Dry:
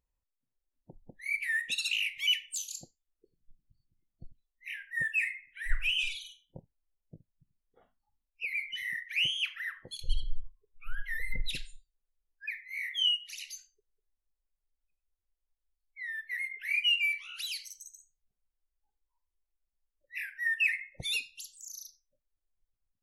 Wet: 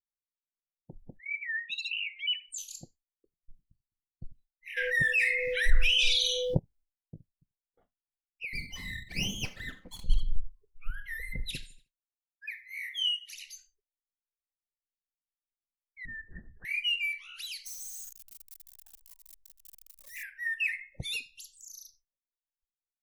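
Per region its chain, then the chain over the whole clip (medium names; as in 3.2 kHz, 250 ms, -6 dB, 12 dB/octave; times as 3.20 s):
1.17–2.58 s: spectral contrast enhancement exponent 2.4 + tape noise reduction on one side only decoder only
4.76–6.57 s: high-order bell 4.5 kHz +12 dB 1 oct + whistle 500 Hz -56 dBFS + level flattener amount 70%
8.53–10.36 s: comb filter that takes the minimum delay 3.9 ms + peaking EQ 190 Hz +4.5 dB 0.27 oct
10.90–13.34 s: high-pass 58 Hz 6 dB/octave + treble shelf 7.1 kHz +6 dB + feedback delay 78 ms, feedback 51%, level -21.5 dB
16.05–16.65 s: comb filter that takes the minimum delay 5.6 ms + hard clipper -35.5 dBFS + brick-wall FIR low-pass 1.9 kHz
17.66–20.23 s: zero-crossing glitches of -35 dBFS + bass shelf 110 Hz +8 dB + Shepard-style phaser falling 1.3 Hz
whole clip: expander -57 dBFS; bass shelf 400 Hz +9 dB; trim -3 dB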